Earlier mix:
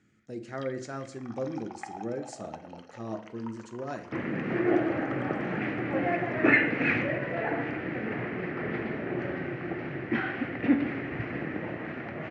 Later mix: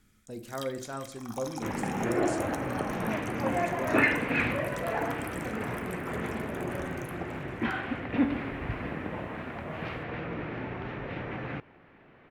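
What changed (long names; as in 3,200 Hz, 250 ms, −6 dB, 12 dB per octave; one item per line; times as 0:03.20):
first sound: remove high-frequency loss of the air 230 metres
second sound: entry −2.50 s
master: remove loudspeaker in its box 120–7,600 Hz, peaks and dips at 130 Hz +5 dB, 330 Hz +6 dB, 1,000 Hz −7 dB, 1,900 Hz +5 dB, 3,600 Hz −6 dB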